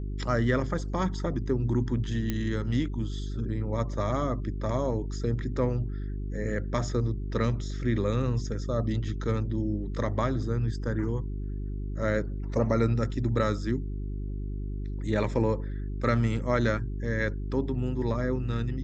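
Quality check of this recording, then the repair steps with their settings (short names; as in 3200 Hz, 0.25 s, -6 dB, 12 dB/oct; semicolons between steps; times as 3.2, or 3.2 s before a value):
hum 50 Hz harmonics 8 -33 dBFS
2.3 pop -15 dBFS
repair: de-click; de-hum 50 Hz, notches 8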